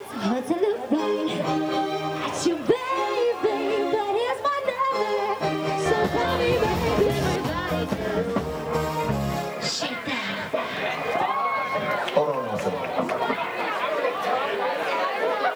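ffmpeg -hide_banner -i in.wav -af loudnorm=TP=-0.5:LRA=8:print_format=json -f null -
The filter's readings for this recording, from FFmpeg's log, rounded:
"input_i" : "-25.0",
"input_tp" : "-7.9",
"input_lra" : "2.0",
"input_thresh" : "-35.0",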